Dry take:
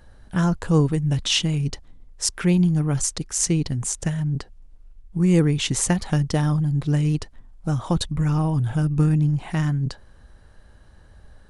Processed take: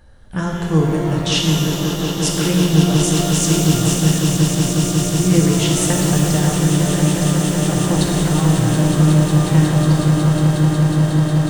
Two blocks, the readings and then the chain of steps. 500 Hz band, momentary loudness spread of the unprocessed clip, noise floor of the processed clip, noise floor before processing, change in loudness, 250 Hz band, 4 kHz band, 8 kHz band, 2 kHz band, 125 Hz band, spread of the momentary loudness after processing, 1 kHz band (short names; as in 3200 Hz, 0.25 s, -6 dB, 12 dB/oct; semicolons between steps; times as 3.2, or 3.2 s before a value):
+9.0 dB, 8 LU, -23 dBFS, -50 dBFS, +6.5 dB, +8.0 dB, +7.5 dB, +7.0 dB, +7.5 dB, +7.0 dB, 4 LU, +9.5 dB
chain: swelling echo 0.182 s, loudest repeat 8, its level -10 dB; shimmer reverb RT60 2.1 s, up +12 st, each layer -8 dB, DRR 0 dB